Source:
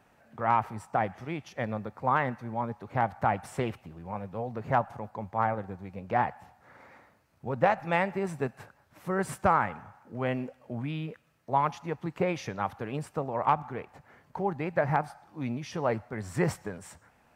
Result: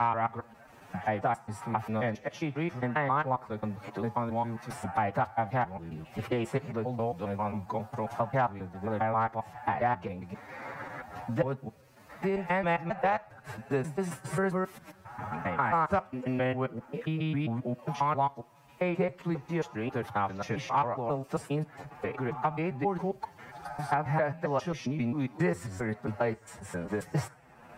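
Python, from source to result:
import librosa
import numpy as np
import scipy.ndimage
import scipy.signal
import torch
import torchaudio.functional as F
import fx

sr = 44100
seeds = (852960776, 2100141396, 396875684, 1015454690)

y = fx.block_reorder(x, sr, ms=84.0, group=7)
y = fx.rev_double_slope(y, sr, seeds[0], early_s=0.26, late_s=1.6, knee_db=-22, drr_db=18.5)
y = fx.stretch_vocoder(y, sr, factor=1.6)
y = fx.band_squash(y, sr, depth_pct=70)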